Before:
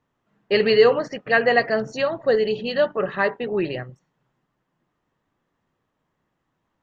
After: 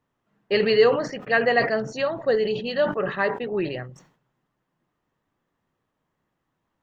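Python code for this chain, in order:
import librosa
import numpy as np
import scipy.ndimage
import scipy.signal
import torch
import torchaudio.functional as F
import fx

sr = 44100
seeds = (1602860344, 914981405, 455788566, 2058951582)

y = fx.sustainer(x, sr, db_per_s=110.0)
y = F.gain(torch.from_numpy(y), -2.5).numpy()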